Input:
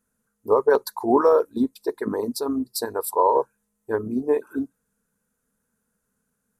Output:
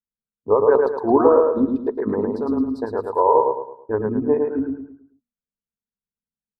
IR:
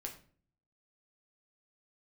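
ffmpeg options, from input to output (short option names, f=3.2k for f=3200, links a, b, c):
-af "agate=range=-29dB:threshold=-42dB:ratio=16:detection=peak,lowpass=1.4k,lowshelf=f=140:g=9.5,bandreject=f=60:t=h:w=6,bandreject=f=120:t=h:w=6,bandreject=f=180:t=h:w=6,bandreject=f=240:t=h:w=6,aecho=1:1:109|218|327|436|545:0.668|0.247|0.0915|0.0339|0.0125,volume=1dB"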